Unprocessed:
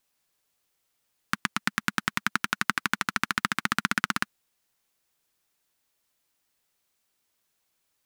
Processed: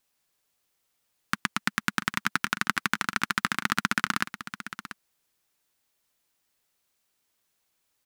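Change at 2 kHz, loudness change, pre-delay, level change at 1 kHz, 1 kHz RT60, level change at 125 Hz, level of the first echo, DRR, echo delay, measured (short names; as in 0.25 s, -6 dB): 0.0 dB, 0.0 dB, none, 0.0 dB, none, +0.5 dB, -12.5 dB, none, 0.688 s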